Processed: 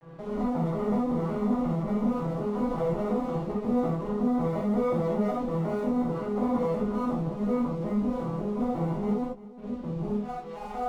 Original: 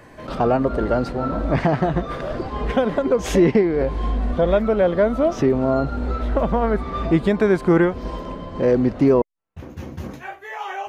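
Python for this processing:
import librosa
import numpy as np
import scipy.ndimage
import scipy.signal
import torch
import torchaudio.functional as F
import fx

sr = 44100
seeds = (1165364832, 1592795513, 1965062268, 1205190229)

y = fx.vocoder_arp(x, sr, chord='major triad', root=52, every_ms=182)
y = fx.dynamic_eq(y, sr, hz=260.0, q=3.0, threshold_db=-33.0, ratio=4.0, max_db=6)
y = fx.over_compress(y, sr, threshold_db=-19.0, ratio=-0.5)
y = fx.tube_stage(y, sr, drive_db=24.0, bias=0.55)
y = fx.clip_asym(y, sr, top_db=-43.5, bottom_db=-26.0)
y = scipy.signal.savgol_filter(y, 65, 4, mode='constant')
y = np.sign(y) * np.maximum(np.abs(y) - 10.0 ** (-55.5 / 20.0), 0.0)
y = fx.doubler(y, sr, ms=14.0, db=-7)
y = y + 10.0 ** (-18.0 / 20.0) * np.pad(y, (int(343 * sr / 1000.0), 0))[:len(y)]
y = fx.rev_gated(y, sr, seeds[0], gate_ms=110, shape='flat', drr_db=-4.5)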